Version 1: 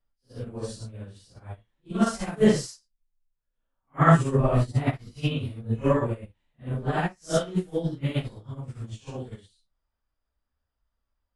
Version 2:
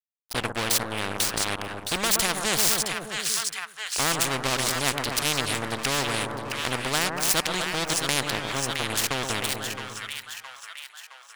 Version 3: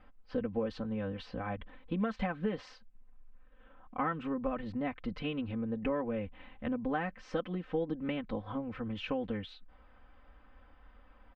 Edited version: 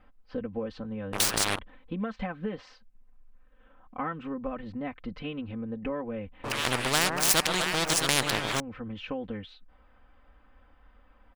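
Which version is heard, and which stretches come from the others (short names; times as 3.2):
3
1.13–1.59 from 2
6.44–8.6 from 2
not used: 1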